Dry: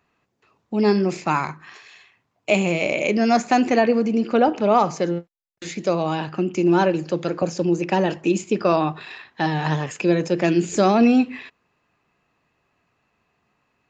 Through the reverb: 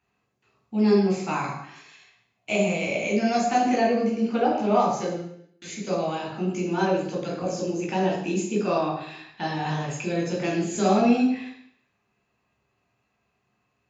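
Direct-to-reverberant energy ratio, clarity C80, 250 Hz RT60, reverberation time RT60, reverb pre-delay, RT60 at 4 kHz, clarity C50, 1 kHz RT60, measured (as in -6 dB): -3.0 dB, 7.0 dB, 0.75 s, 0.70 s, 11 ms, 0.70 s, 3.5 dB, 0.70 s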